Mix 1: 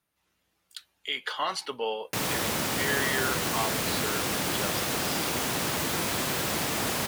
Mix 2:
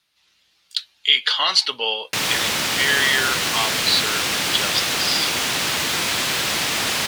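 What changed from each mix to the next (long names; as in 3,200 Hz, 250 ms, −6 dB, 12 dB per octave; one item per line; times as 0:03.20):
speech: add parametric band 4,300 Hz +8.5 dB 1.1 octaves
master: add parametric band 3,400 Hz +12 dB 3 octaves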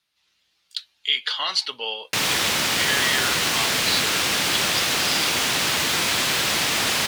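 speech −6.0 dB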